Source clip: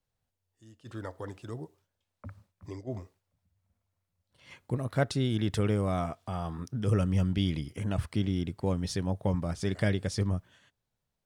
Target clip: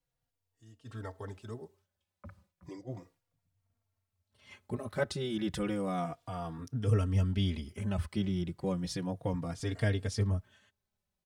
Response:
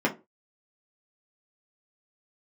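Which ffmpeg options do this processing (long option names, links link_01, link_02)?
-filter_complex "[0:a]asplit=2[link_01][link_02];[link_02]adelay=3.7,afreqshift=-0.33[link_03];[link_01][link_03]amix=inputs=2:normalize=1"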